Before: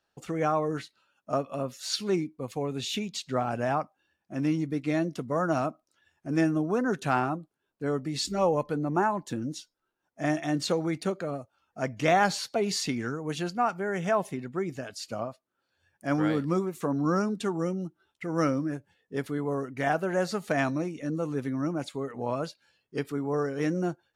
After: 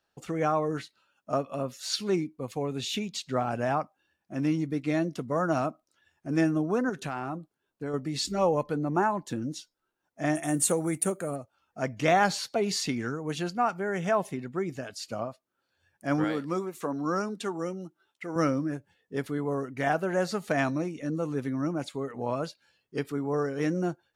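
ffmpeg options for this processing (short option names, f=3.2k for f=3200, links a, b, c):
-filter_complex "[0:a]asettb=1/sr,asplit=3[a][b][c];[a]atrim=end=6.894[d];[b]atrim=start=6.89:end=7.94,asetpts=PTS-STARTPTS,afade=t=in:d=0.004:c=qsin,afade=t=out:st=1.046:d=0.004:c=qsin,acompressor=threshold=-29dB:ratio=6:attack=3.2:release=140:knee=1:detection=peak[e];[c]atrim=start=7.936[f];[d][e]acrossfade=d=0.004:c1=hsin:c2=qsin[g];[g][f]acrossfade=d=0.004:c1=qsin:c2=hsin,asettb=1/sr,asplit=3[h][i][j];[h]atrim=end=10.354[k];[i]atrim=start=10.35:end=11.36,asetpts=PTS-STARTPTS,afade=t=in:d=0.004:c=qsin,afade=t=out:st=1.006:d=0.004:c=qsin,highshelf=f=6.6k:t=q:w=3:g=13.5[l];[j]atrim=start=11.356[m];[k][l]acrossfade=d=0.004:c1=hsin:c2=qsin[n];[n][m]acrossfade=d=0.004:c1=qsin:c2=hsin,asettb=1/sr,asplit=3[o][p][q];[o]atrim=end=16.244[r];[p]atrim=start=16.24:end=18.36,asetpts=PTS-STARTPTS,afade=t=in:d=0.004:c=qsin,afade=t=out:st=2.116:d=0.004:c=qsin,highpass=f=360:p=1[s];[q]atrim=start=18.356[t];[r][s]acrossfade=d=0.004:c1=hsin:c2=qsin[u];[u][t]acrossfade=d=0.004:c1=qsin:c2=hsin"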